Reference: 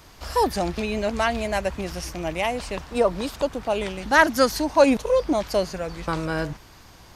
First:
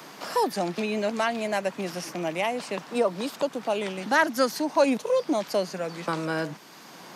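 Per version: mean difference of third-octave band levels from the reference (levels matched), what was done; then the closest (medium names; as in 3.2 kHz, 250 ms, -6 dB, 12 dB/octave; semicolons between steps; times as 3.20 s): 3.5 dB: steep high-pass 160 Hz 36 dB/octave; three bands compressed up and down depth 40%; trim -3 dB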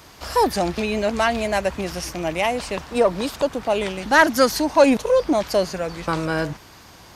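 1.0 dB: high-pass 110 Hz 6 dB/octave; in parallel at -4 dB: saturation -18 dBFS, distortion -9 dB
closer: second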